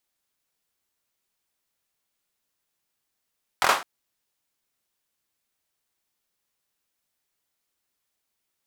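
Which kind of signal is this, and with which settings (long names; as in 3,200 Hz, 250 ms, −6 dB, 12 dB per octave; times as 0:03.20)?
synth clap length 0.21 s, apart 23 ms, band 1,000 Hz, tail 0.32 s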